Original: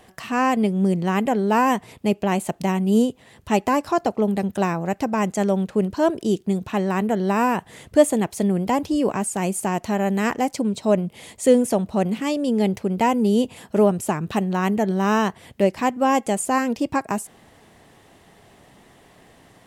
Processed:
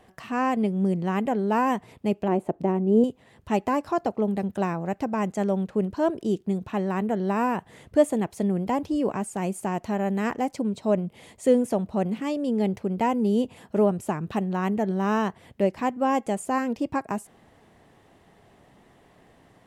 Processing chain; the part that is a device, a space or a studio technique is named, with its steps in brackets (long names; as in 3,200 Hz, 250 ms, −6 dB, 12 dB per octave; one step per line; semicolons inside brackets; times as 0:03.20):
behind a face mask (high-shelf EQ 2,700 Hz −8 dB)
0:02.28–0:03.04: drawn EQ curve 210 Hz 0 dB, 330 Hz +8 dB, 5,100 Hz −14 dB
level −4 dB